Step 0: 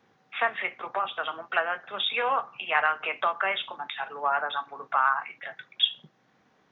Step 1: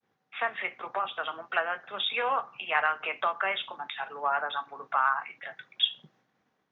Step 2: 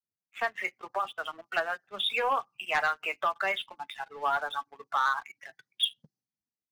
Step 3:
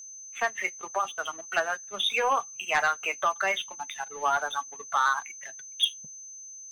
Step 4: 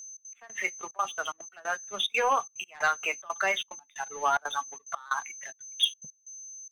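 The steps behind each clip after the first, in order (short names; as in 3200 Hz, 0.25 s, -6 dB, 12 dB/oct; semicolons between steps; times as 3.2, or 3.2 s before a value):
expander -59 dBFS; AGC gain up to 4 dB; gain -6 dB
per-bin expansion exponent 1.5; sample leveller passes 2; gain -4.5 dB
whine 6200 Hz -44 dBFS; gain +2.5 dB
step gate "xx.x..xxxxx.xx" 182 bpm -24 dB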